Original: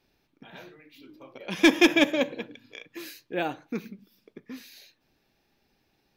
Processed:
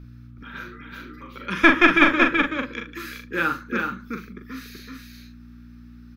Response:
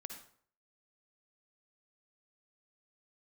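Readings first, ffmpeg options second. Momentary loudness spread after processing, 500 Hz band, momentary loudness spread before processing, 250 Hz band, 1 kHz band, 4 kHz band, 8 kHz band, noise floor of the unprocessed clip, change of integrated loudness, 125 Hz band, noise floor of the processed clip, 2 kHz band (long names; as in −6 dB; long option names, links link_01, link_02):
23 LU, +0.5 dB, 24 LU, +2.5 dB, +11.0 dB, 0.0 dB, can't be measured, −73 dBFS, +4.5 dB, +8.0 dB, −45 dBFS, +9.5 dB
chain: -filter_complex "[0:a]bandreject=frequency=2800:width=27,acrossover=split=150|570|2900[link_01][link_02][link_03][link_04];[link_02]aeval=exprs='clip(val(0),-1,0.0562)':channel_layout=same[link_05];[link_03]highpass=frequency=1300:width_type=q:width=6.4[link_06];[link_04]acompressor=threshold=-47dB:ratio=6[link_07];[link_01][link_05][link_06][link_07]amix=inputs=4:normalize=0,aeval=exprs='val(0)+0.00631*(sin(2*PI*60*n/s)+sin(2*PI*2*60*n/s)/2+sin(2*PI*3*60*n/s)/3+sin(2*PI*4*60*n/s)/4+sin(2*PI*5*60*n/s)/5)':channel_layout=same,asplit=2[link_08][link_09];[link_09]adelay=42,volume=-6dB[link_10];[link_08][link_10]amix=inputs=2:normalize=0,aecho=1:1:379:0.631,volume=3.5dB"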